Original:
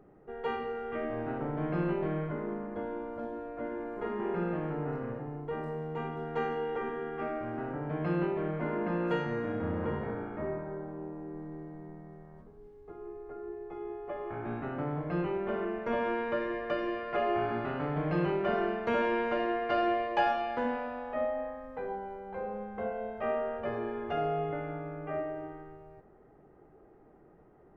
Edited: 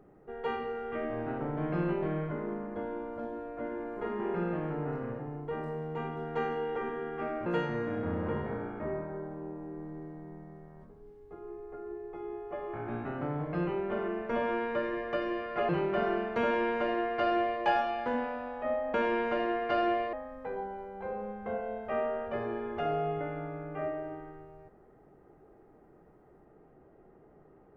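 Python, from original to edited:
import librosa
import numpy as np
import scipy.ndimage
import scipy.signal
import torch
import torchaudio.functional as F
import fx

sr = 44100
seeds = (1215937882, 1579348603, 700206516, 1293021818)

y = fx.edit(x, sr, fx.cut(start_s=7.46, length_s=1.57),
    fx.cut(start_s=17.26, length_s=0.94),
    fx.duplicate(start_s=18.94, length_s=1.19, to_s=21.45), tone=tone)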